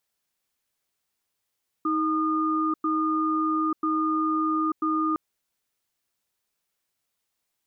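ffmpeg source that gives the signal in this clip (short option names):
-f lavfi -i "aevalsrc='0.0596*(sin(2*PI*315*t)+sin(2*PI*1220*t))*clip(min(mod(t,0.99),0.89-mod(t,0.99))/0.005,0,1)':d=3.31:s=44100"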